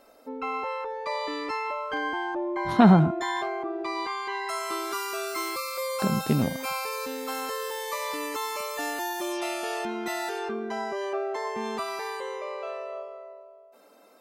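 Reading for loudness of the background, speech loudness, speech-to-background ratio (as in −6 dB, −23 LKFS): −31.5 LKFS, −22.5 LKFS, 9.0 dB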